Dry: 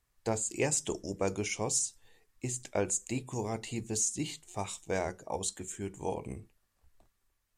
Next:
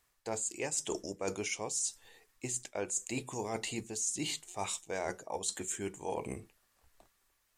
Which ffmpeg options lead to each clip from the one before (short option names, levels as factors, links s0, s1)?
-af "lowshelf=f=230:g=-12,areverse,acompressor=threshold=0.01:ratio=6,areverse,volume=2.24"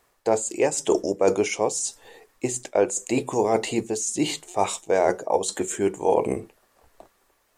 -af "equalizer=f=500:t=o:w=2.6:g=12,volume=2"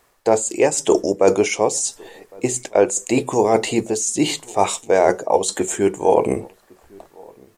-filter_complex "[0:a]asplit=2[s0][s1];[s1]adelay=1108,volume=0.0501,highshelf=f=4000:g=-24.9[s2];[s0][s2]amix=inputs=2:normalize=0,volume=1.88"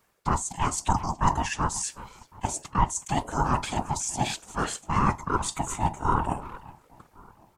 -filter_complex "[0:a]asplit=2[s0][s1];[s1]adelay=370,highpass=300,lowpass=3400,asoftclip=type=hard:threshold=0.282,volume=0.2[s2];[s0][s2]amix=inputs=2:normalize=0,afftfilt=real='hypot(re,im)*cos(2*PI*random(0))':imag='hypot(re,im)*sin(2*PI*random(1))':win_size=512:overlap=0.75,aeval=exprs='val(0)*sin(2*PI*490*n/s)':c=same"